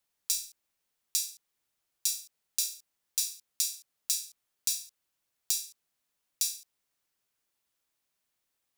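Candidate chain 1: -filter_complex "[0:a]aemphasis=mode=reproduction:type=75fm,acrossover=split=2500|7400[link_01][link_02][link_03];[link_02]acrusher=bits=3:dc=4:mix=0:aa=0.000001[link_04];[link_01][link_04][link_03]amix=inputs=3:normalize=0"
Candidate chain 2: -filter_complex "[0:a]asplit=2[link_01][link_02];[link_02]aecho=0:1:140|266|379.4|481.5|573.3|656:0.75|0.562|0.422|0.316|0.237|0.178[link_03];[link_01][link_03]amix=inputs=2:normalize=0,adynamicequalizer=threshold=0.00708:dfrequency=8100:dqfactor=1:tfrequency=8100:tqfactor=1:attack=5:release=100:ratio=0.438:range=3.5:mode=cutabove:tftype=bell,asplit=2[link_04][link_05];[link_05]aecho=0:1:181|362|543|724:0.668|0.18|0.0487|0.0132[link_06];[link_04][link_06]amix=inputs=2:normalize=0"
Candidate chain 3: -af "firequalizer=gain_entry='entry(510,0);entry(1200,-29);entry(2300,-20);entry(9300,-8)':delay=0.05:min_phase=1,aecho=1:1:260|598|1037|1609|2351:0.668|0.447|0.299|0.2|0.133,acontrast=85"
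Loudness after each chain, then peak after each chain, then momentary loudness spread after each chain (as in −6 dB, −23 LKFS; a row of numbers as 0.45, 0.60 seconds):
−46.0, −30.5, −35.0 LKFS; −23.5, −8.0, −9.0 dBFS; 10, 8, 13 LU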